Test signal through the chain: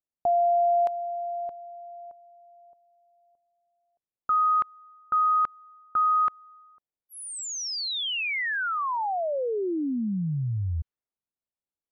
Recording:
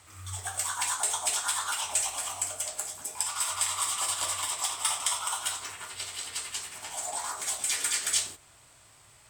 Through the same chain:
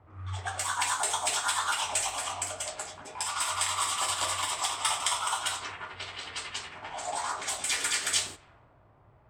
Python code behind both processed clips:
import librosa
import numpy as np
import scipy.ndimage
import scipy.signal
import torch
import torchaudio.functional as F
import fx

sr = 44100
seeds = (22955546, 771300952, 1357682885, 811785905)

y = fx.env_lowpass(x, sr, base_hz=690.0, full_db=-28.5)
y = fx.high_shelf(y, sr, hz=7000.0, db=-12.0)
y = y * librosa.db_to_amplitude(4.5)